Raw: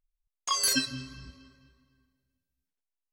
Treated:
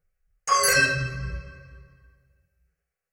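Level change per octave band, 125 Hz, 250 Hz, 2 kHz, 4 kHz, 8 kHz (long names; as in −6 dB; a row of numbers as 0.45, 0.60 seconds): +14.0, −1.5, +15.5, +1.0, +3.5 decibels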